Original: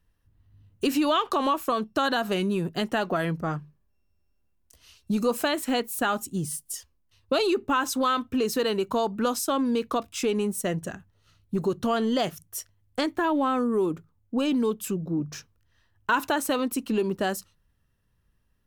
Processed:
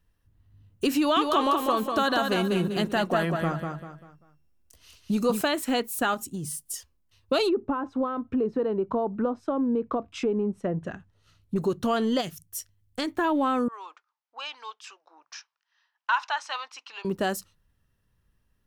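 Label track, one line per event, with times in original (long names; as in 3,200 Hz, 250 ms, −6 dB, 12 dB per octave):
0.970000	5.410000	repeating echo 196 ms, feedback 35%, level −5 dB
6.140000	6.570000	downward compressor, threshold −29 dBFS
7.480000	11.560000	treble cut that deepens with the level closes to 780 Hz, closed at −23 dBFS
12.200000	13.070000	parametric band 780 Hz −12 dB → −6 dB 2.7 octaves
13.680000	17.050000	elliptic band-pass filter 850–5,600 Hz, stop band 60 dB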